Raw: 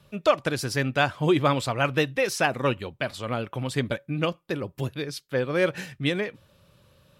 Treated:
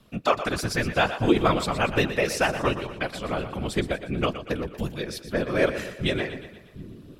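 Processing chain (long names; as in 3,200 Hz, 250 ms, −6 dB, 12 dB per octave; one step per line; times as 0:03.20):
random phases in short frames
echo with a time of its own for lows and highs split 300 Hz, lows 744 ms, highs 119 ms, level −11.5 dB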